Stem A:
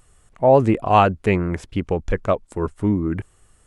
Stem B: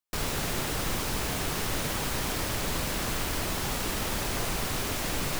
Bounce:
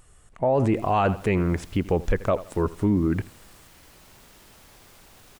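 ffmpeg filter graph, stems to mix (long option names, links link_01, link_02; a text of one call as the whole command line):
ffmpeg -i stem1.wav -i stem2.wav -filter_complex "[0:a]volume=0.5dB,asplit=3[link_01][link_02][link_03];[link_02]volume=-20.5dB[link_04];[1:a]aeval=exprs='0.0376*(abs(mod(val(0)/0.0376+3,4)-2)-1)':channel_layout=same,adelay=500,volume=-19dB,asplit=2[link_05][link_06];[link_06]volume=-7.5dB[link_07];[link_03]apad=whole_len=259834[link_08];[link_05][link_08]sidechaincompress=threshold=-23dB:ratio=8:attack=16:release=196[link_09];[link_04][link_07]amix=inputs=2:normalize=0,aecho=0:1:82|164|246|328:1|0.3|0.09|0.027[link_10];[link_01][link_09][link_10]amix=inputs=3:normalize=0,alimiter=limit=-13.5dB:level=0:latency=1:release=11" out.wav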